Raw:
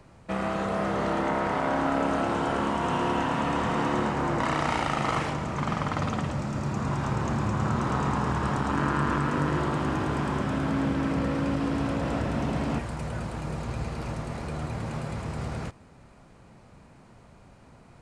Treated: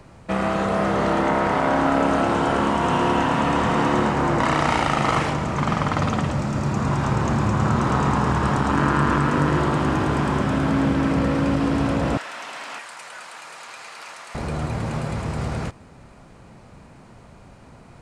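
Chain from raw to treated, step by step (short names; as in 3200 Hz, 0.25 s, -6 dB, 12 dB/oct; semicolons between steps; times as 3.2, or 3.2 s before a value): 12.17–14.35 HPF 1300 Hz 12 dB/oct; gain +6.5 dB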